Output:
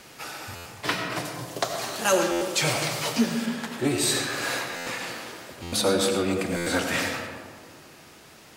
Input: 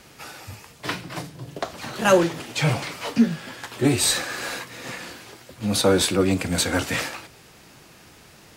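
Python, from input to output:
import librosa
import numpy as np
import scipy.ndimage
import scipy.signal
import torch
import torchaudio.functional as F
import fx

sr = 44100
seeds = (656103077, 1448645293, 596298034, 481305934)

y = fx.bass_treble(x, sr, bass_db=-4, treble_db=9, at=(1.25, 3.46))
y = fx.rider(y, sr, range_db=4, speed_s=0.5)
y = fx.low_shelf(y, sr, hz=160.0, db=-8.5)
y = fx.rev_freeverb(y, sr, rt60_s=1.8, hf_ratio=0.35, predelay_ms=50, drr_db=3.5)
y = fx.buffer_glitch(y, sr, at_s=(0.55, 2.31, 4.76, 5.62, 6.56), block=512, repeats=8)
y = y * 10.0 ** (-2.0 / 20.0)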